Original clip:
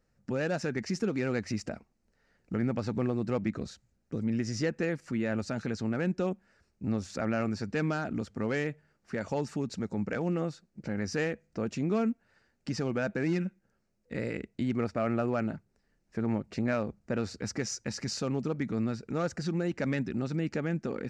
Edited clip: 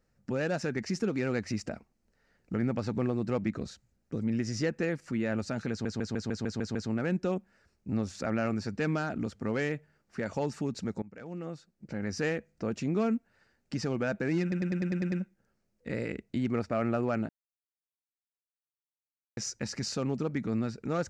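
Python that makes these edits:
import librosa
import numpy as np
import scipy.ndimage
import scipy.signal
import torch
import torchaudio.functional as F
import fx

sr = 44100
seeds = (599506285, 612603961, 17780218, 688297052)

y = fx.edit(x, sr, fx.stutter(start_s=5.7, slice_s=0.15, count=8),
    fx.fade_in_from(start_s=9.97, length_s=1.21, floor_db=-21.5),
    fx.stutter(start_s=13.37, slice_s=0.1, count=8),
    fx.silence(start_s=15.54, length_s=2.08), tone=tone)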